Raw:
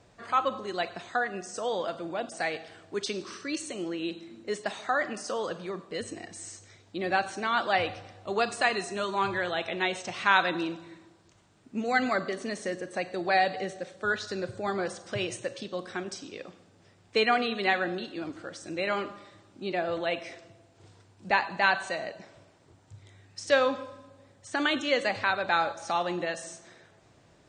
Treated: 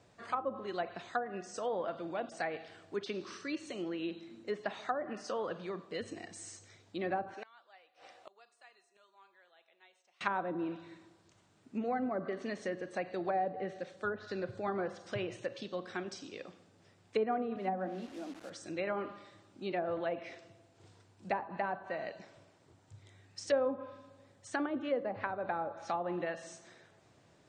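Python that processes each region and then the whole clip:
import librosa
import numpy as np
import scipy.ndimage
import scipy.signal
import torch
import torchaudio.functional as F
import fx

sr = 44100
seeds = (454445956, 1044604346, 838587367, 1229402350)

y = fx.chain(x, sr, fx.highpass(hz=520.0, slope=12),
    fx.gate_flip(shuts_db=-30.0, range_db=-29), at=(7.34, 10.21))
y = fx.chain(y, sr, fx.cheby_ripple_highpass(hz=180.0, ripple_db=9),
    fx.tilt_eq(slope=-3.0),
    fx.quant_dither(seeds[0], bits=8, dither='none'), at=(17.56, 18.5))
y = scipy.signal.sosfilt(scipy.signal.butter(2, 74.0, 'highpass', fs=sr, output='sos'), y)
y = fx.env_lowpass_down(y, sr, base_hz=690.0, full_db=-23.5)
y = y * 10.0 ** (-4.5 / 20.0)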